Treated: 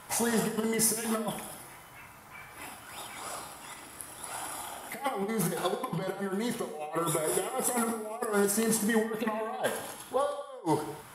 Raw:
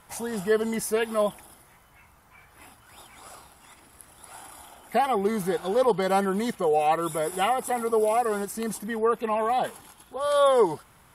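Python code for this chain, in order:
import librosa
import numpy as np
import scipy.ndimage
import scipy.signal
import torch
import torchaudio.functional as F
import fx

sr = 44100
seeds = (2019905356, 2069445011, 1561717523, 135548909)

y = fx.over_compress(x, sr, threshold_db=-30.0, ratio=-0.5)
y = fx.low_shelf(y, sr, hz=85.0, db=-11.5)
y = fx.rev_gated(y, sr, seeds[0], gate_ms=300, shape='falling', drr_db=5.0)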